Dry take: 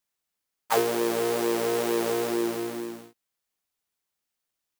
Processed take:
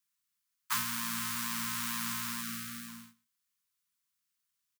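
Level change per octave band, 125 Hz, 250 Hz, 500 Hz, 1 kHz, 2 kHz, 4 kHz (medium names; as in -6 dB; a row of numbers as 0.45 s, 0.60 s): -4.5 dB, -13.5 dB, under -40 dB, -9.5 dB, -3.0 dB, -2.0 dB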